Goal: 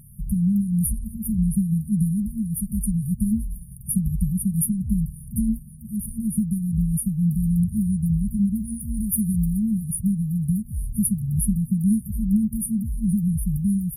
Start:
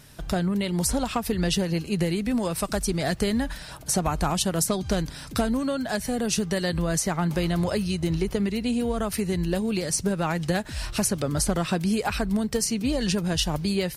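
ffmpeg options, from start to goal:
ffmpeg -i in.wav -filter_complex "[0:a]asettb=1/sr,asplit=3[link_01][link_02][link_03];[link_01]atrim=end=8.604[link_04];[link_02]atrim=start=8.6:end=9.53,asetpts=PTS-STARTPTS,afade=type=in:duration=0.004:curve=qsin,afade=type=out:start_time=0.926:duration=0.004:curve=qsin,highshelf=frequency=7200:gain=10[link_05];[link_03]atrim=start=9.526[link_06];[link_04][link_05]acrossfade=duration=0.004:curve1=hsin:curve2=qsin[link_07];[link_07][link_06]acrossfade=duration=0.004:curve1=qsin:curve2=hsin,afftfilt=real='re*(1-between(b*sr/4096,230,9300))':imag='im*(1-between(b*sr/4096,230,9300))':win_size=4096:overlap=0.75,volume=5.5dB" out.wav

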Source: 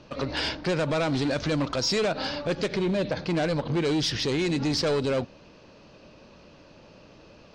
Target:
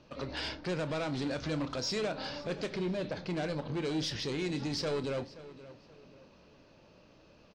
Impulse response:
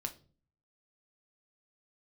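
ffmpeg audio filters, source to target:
-filter_complex "[0:a]asplit=2[link_01][link_02];[link_02]adelay=525,lowpass=frequency=4100:poles=1,volume=-16.5dB,asplit=2[link_03][link_04];[link_04]adelay=525,lowpass=frequency=4100:poles=1,volume=0.35,asplit=2[link_05][link_06];[link_06]adelay=525,lowpass=frequency=4100:poles=1,volume=0.35[link_07];[link_01][link_03][link_05][link_07]amix=inputs=4:normalize=0,asplit=2[link_08][link_09];[1:a]atrim=start_sample=2205,asetrate=66150,aresample=44100,adelay=28[link_10];[link_09][link_10]afir=irnorm=-1:irlink=0,volume=-8dB[link_11];[link_08][link_11]amix=inputs=2:normalize=0,volume=-9dB"

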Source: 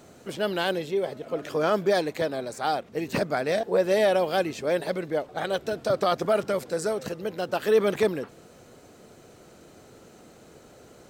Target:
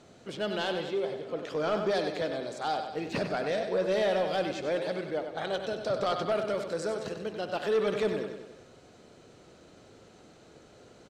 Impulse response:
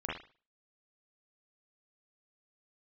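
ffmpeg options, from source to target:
-filter_complex "[0:a]lowpass=6900,equalizer=frequency=3700:width=1.6:gain=3.5,aecho=1:1:96|192|288|384|480|576:0.376|0.199|0.106|0.056|0.0297|0.0157,asplit=2[link_01][link_02];[1:a]atrim=start_sample=2205,asetrate=37926,aresample=44100[link_03];[link_02][link_03]afir=irnorm=-1:irlink=0,volume=-17.5dB[link_04];[link_01][link_04]amix=inputs=2:normalize=0,asoftclip=type=tanh:threshold=-14.5dB,volume=-5.5dB"

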